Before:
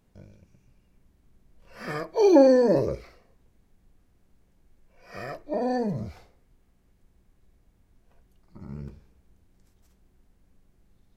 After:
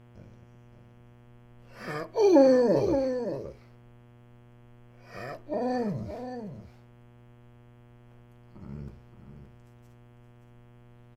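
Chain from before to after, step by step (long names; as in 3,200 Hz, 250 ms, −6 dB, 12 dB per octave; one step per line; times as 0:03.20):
single-tap delay 572 ms −9 dB
hum with harmonics 120 Hz, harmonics 28, −52 dBFS −7 dB per octave
level −2.5 dB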